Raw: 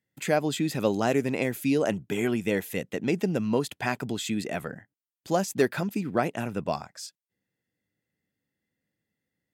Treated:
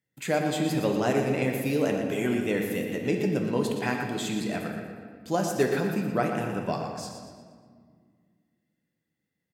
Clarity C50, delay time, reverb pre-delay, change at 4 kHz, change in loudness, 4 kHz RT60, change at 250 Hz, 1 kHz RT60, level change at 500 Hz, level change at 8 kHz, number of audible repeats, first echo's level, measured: 3.0 dB, 0.119 s, 5 ms, -0.5 dB, 0.0 dB, 1.2 s, +0.5 dB, 1.7 s, +0.5 dB, -1.0 dB, 3, -8.5 dB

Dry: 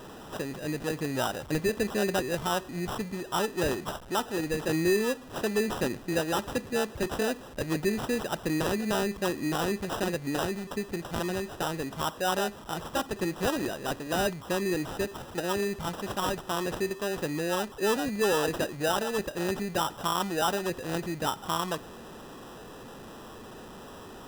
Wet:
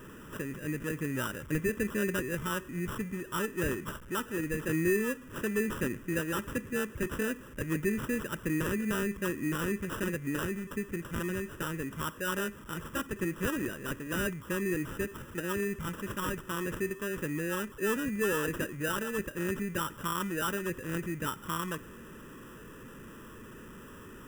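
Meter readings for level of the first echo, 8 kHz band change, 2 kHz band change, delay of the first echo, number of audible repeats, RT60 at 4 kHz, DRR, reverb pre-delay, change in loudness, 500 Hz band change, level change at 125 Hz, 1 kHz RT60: none, -4.0 dB, -0.5 dB, none, none, none, none, none, -3.5 dB, -5.0 dB, -0.5 dB, none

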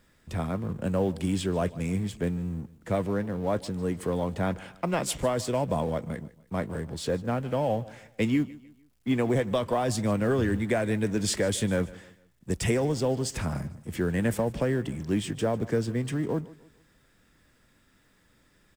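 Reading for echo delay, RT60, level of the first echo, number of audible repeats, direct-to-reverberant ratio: 0.15 s, none, -20.0 dB, 2, none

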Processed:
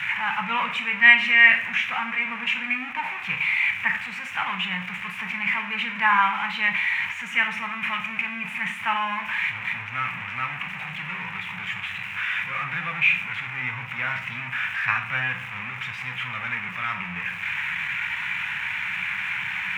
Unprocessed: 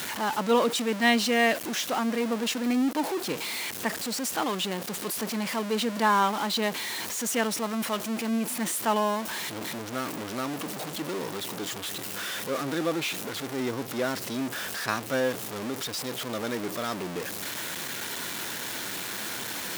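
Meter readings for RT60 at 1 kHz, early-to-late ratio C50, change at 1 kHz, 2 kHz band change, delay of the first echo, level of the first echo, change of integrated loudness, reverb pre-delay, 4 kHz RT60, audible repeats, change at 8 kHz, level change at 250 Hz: 0.55 s, 10.0 dB, +2.0 dB, +12.5 dB, none, none, +5.0 dB, 13 ms, 0.50 s, none, under -15 dB, -10.5 dB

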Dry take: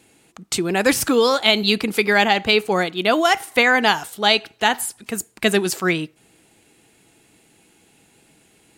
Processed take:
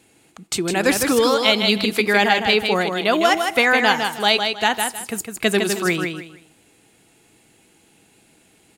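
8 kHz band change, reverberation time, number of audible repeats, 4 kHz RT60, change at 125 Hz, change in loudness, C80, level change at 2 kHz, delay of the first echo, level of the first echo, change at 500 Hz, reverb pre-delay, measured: 0.0 dB, none, 3, none, 0.0 dB, 0.0 dB, none, 0.0 dB, 0.157 s, -5.5 dB, 0.0 dB, none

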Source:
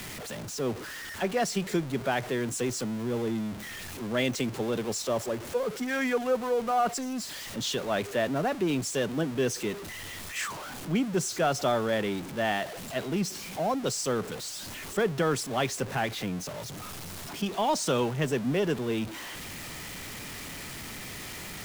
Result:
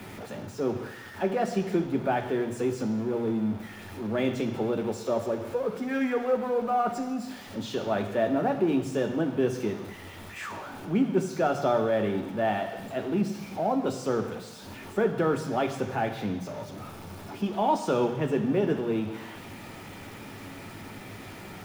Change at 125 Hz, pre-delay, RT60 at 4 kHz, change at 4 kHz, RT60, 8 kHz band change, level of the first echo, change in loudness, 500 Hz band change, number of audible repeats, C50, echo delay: 0.0 dB, 3 ms, 1.2 s, -8.0 dB, 1.1 s, -12.0 dB, none, +2.0 dB, +2.0 dB, none, 9.0 dB, none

